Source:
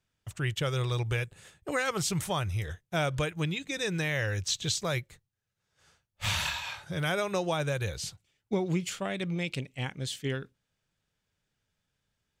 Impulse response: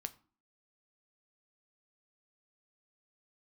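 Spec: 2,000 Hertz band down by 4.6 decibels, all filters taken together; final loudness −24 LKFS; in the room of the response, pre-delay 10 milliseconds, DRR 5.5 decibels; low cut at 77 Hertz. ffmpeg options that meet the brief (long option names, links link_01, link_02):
-filter_complex "[0:a]highpass=77,equalizer=frequency=2000:width_type=o:gain=-6,asplit=2[link_01][link_02];[1:a]atrim=start_sample=2205,adelay=10[link_03];[link_02][link_03]afir=irnorm=-1:irlink=0,volume=-3dB[link_04];[link_01][link_04]amix=inputs=2:normalize=0,volume=8dB"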